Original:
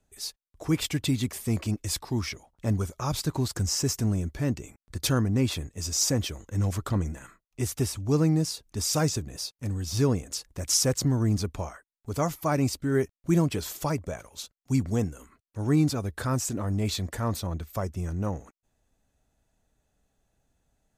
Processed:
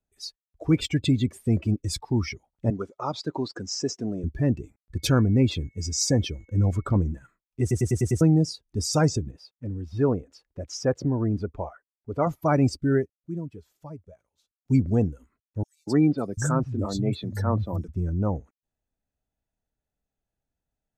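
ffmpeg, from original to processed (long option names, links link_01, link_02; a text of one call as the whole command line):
ffmpeg -i in.wav -filter_complex "[0:a]asettb=1/sr,asplit=3[link_01][link_02][link_03];[link_01]atrim=end=2.704[link_04];[link_02]atrim=start=2.7:end=4.24,asetpts=PTS-STARTPTS,afade=type=in:duration=0.004:curve=qsin,afade=type=out:start_time=1.536:duration=0.004:curve=qsin,highpass=280,lowpass=6500[link_05];[link_03]atrim=start=4.236[link_06];[link_04][link_05]acrossfade=duration=0.004:curve1=hsin:curve2=qsin[link_07];[link_07][link_06]acrossfade=duration=0.004:curve1=qsin:curve2=hsin,asettb=1/sr,asplit=3[link_08][link_09][link_10];[link_08]atrim=end=4.964[link_11];[link_09]atrim=start=4.96:end=6.97,asetpts=PTS-STARTPTS,afade=type=in:duration=0.004:curve=qsin,afade=type=out:start_time=2.006:duration=0.004:curve=qsin,aeval=exprs='val(0)+0.002*sin(2*PI*2200*n/s)':channel_layout=same[link_12];[link_10]atrim=start=6.966[link_13];[link_11][link_12]acrossfade=duration=0.004:curve1=hsin:curve2=qsin[link_14];[link_14][link_13]acrossfade=duration=0.004:curve1=qsin:curve2=hsin,asettb=1/sr,asplit=3[link_15][link_16][link_17];[link_15]atrim=end=9.314[link_18];[link_16]atrim=start=9.31:end=12.27,asetpts=PTS-STARTPTS,afade=type=in:duration=0.004:curve=qsin,afade=type=out:start_time=2.956:duration=0.004:curve=qsin,bass=frequency=250:gain=-7,treble=frequency=4000:gain=-13[link_19];[link_17]atrim=start=12.266[link_20];[link_18][link_19]acrossfade=duration=0.004:curve1=hsin:curve2=qsin[link_21];[link_21][link_20]acrossfade=duration=0.004:curve1=qsin:curve2=hsin,asettb=1/sr,asplit=3[link_22][link_23][link_24];[link_22]atrim=end=15.634[link_25];[link_23]atrim=start=15.63:end=17.89,asetpts=PTS-STARTPTS,afade=type=in:duration=0.004:curve=qsin,afade=type=out:start_time=2.256:duration=0.004:curve=qsin,acrossover=split=150|3900[link_26][link_27][link_28];[link_27]adelay=240[link_29];[link_26]adelay=740[link_30];[link_30][link_29][link_28]amix=inputs=3:normalize=0,atrim=end_sample=99666[link_31];[link_24]atrim=start=17.886[link_32];[link_25][link_31]acrossfade=duration=0.004:curve1=hsin:curve2=qsin[link_33];[link_33][link_32]acrossfade=duration=0.004:curve1=qsin:curve2=hsin,asplit=9[link_34][link_35][link_36][link_37][link_38][link_39][link_40][link_41][link_42];[link_34]atrim=end=7.712[link_43];[link_35]atrim=start=7.608:end=7.712[link_44];[link_36]atrim=start=7.608:end=7.712[link_45];[link_37]atrim=start=7.608:end=7.712[link_46];[link_38]atrim=start=7.608:end=7.712[link_47];[link_39]atrim=start=7.608:end=7.712[link_48];[link_40]atrim=start=8.208:end=13.08,asetpts=PTS-STARTPTS,afade=type=out:start_time=4.712:duration=0.16:silence=0.188365[link_49];[link_41]atrim=start=13.08:end=14.56,asetpts=PTS-STARTPTS,volume=-14.5dB[link_50];[link_42]atrim=start=14.56,asetpts=PTS-STARTPTS,afade=type=in:duration=0.16:silence=0.188365[link_51];[link_43][link_44]acrossfade=duration=0.004:curve1=hsin:curve2=hsin[link_52];[link_52][link_45]acrossfade=duration=0.004:curve1=hsin:curve2=hsin[link_53];[link_53][link_46]acrossfade=duration=0.004:curve1=hsin:curve2=hsin[link_54];[link_54][link_47]acrossfade=duration=0.004:curve1=hsin:curve2=hsin[link_55];[link_55][link_48]acrossfade=duration=0.004:curve1=hsin:curve2=hsin[link_56];[link_49][link_50][link_51]concat=n=3:v=0:a=1[link_57];[link_56][link_57]acrossfade=duration=0.004:curve1=hsin:curve2=hsin,afftdn=noise_reduction=18:noise_floor=-35,highshelf=frequency=4900:gain=-7.5,bandreject=frequency=1100:width=15,volume=4.5dB" out.wav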